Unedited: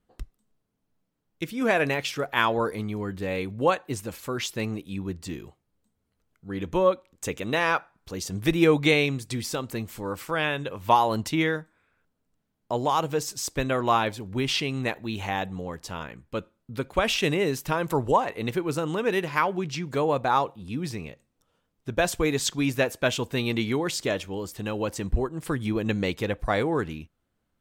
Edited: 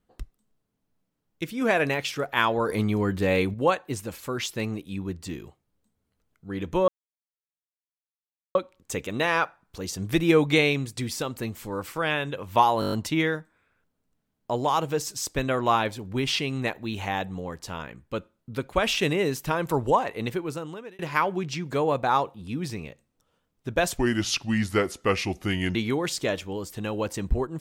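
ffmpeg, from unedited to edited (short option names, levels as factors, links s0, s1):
-filter_complex "[0:a]asplit=13[s0][s1][s2][s3][s4][s5][s6][s7][s8][s9][s10][s11][s12];[s0]atrim=end=2.692[s13];[s1]atrim=start=2.688:end=3.542,asetpts=PTS-STARTPTS,volume=2.11[s14];[s2]atrim=start=3.538:end=6.88,asetpts=PTS-STARTPTS,afade=t=out:st=3.338:d=0.004:c=hsin,apad=pad_dur=1.67[s15];[s3]atrim=start=6.88:end=11.152,asetpts=PTS-STARTPTS,afade=t=in:d=0.004:c=hsin[s16];[s4]atrim=start=11.128:end=11.152[s17];[s5]atrim=start=11.128:end=11.152[s18];[s6]atrim=start=11.128:end=11.152[s19];[s7]atrim=start=11.128:end=11.152[s20];[s8]atrim=start=11.128:end=11.152[s21];[s9]atrim=start=11.128:end=19.2,asetpts=PTS-STARTPTS,afade=t=out:st=7.282:d=0.79[s22];[s10]atrim=start=19.2:end=22.184,asetpts=PTS-STARTPTS,afade=t=in:d=0.004:c=hsin[s23];[s11]atrim=start=22.18:end=23.57,asetpts=PTS-STARTPTS,asetrate=34398,aresample=44100,atrim=end_sample=78588,asetpts=PTS-STARTPTS[s24];[s12]atrim=start=23.566[s25];[s13][s14]acrossfade=d=0.004:c1=hsin:c2=hsin[s26];[s15][s16]concat=n=2:v=0:a=1[s27];[s26][s27]acrossfade=d=0.004:c1=hsin:c2=hsin[s28];[s28][s17]acrossfade=d=0.004:c1=hsin:c2=hsin[s29];[s29][s18]acrossfade=d=0.004:c1=hsin:c2=hsin[s30];[s30][s19]acrossfade=d=0.004:c1=hsin:c2=hsin[s31];[s31][s20]acrossfade=d=0.004:c1=hsin:c2=hsin[s32];[s32][s21]acrossfade=d=0.004:c1=hsin:c2=hsin[s33];[s22][s23]concat=n=2:v=0:a=1[s34];[s33][s34]acrossfade=d=0.004:c1=hsin:c2=hsin[s35];[s35][s24]acrossfade=d=0.004:c1=hsin:c2=hsin[s36];[s36][s25]acrossfade=d=0.004:c1=hsin:c2=hsin"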